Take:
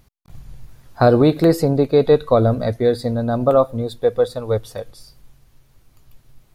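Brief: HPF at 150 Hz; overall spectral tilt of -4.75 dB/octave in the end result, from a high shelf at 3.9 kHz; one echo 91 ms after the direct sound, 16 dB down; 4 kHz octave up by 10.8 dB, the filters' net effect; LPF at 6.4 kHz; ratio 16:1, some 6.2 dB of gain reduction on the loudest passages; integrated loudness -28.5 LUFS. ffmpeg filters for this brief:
-af "highpass=150,lowpass=6400,highshelf=f=3900:g=7,equalizer=f=4000:t=o:g=8.5,acompressor=threshold=0.2:ratio=16,aecho=1:1:91:0.158,volume=0.447"

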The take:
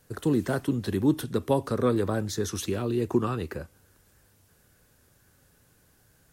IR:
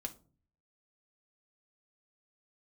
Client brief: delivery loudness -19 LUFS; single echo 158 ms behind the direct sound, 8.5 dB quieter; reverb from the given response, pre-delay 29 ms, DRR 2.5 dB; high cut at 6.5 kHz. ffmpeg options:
-filter_complex "[0:a]lowpass=6500,aecho=1:1:158:0.376,asplit=2[s0][s1];[1:a]atrim=start_sample=2205,adelay=29[s2];[s1][s2]afir=irnorm=-1:irlink=0,volume=0.944[s3];[s0][s3]amix=inputs=2:normalize=0,volume=1.88"

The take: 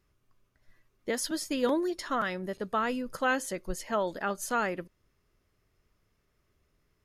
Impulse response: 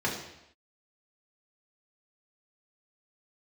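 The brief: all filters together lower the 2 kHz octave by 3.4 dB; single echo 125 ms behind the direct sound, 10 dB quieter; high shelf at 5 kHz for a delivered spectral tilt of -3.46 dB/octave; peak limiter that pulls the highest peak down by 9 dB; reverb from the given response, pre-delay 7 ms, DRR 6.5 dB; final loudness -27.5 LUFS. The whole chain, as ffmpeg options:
-filter_complex "[0:a]equalizer=f=2000:t=o:g=-6,highshelf=f=5000:g=8,alimiter=limit=0.0668:level=0:latency=1,aecho=1:1:125:0.316,asplit=2[s0][s1];[1:a]atrim=start_sample=2205,adelay=7[s2];[s1][s2]afir=irnorm=-1:irlink=0,volume=0.158[s3];[s0][s3]amix=inputs=2:normalize=0,volume=1.78"

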